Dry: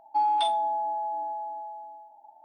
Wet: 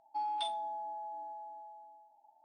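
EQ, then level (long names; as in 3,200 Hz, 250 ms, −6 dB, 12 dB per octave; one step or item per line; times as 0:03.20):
high-frequency loss of the air 72 metres
first-order pre-emphasis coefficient 0.8
parametric band 86 Hz +4.5 dB 2.9 octaves
+1.0 dB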